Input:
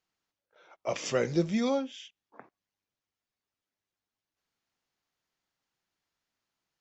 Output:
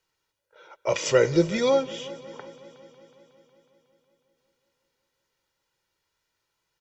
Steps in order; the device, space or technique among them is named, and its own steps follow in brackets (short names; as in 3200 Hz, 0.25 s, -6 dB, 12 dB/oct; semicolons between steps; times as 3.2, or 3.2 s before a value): comb 2.1 ms, depth 61%; multi-head tape echo (multi-head echo 0.183 s, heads first and second, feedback 61%, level -21.5 dB; wow and flutter 19 cents); gain +6 dB